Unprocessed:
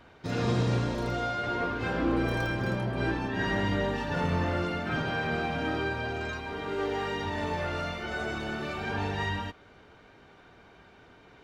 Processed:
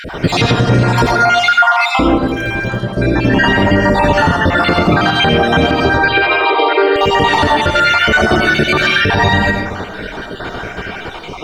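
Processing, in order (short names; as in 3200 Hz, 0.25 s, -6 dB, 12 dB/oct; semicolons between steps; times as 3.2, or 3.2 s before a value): random spectral dropouts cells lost 57%; compressor 4:1, threshold -42 dBFS, peak gain reduction 15.5 dB; 1.85–3.34 dip -9 dB, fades 0.49 s; 5.97–6.96 brick-wall FIR band-pass 300–5200 Hz; digital reverb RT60 0.78 s, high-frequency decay 0.5×, pre-delay 45 ms, DRR 2.5 dB; maximiser +33 dB; gain -1 dB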